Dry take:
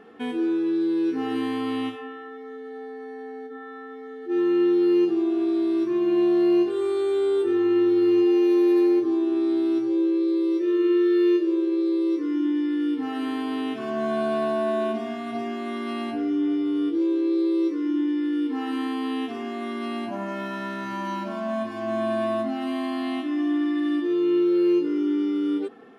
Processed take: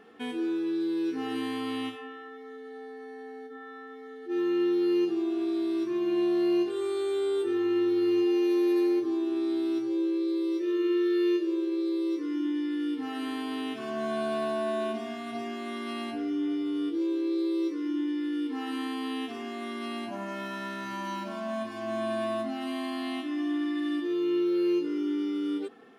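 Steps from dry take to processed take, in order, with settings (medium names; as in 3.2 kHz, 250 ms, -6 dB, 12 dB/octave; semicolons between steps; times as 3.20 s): treble shelf 2.4 kHz +8 dB; trim -6 dB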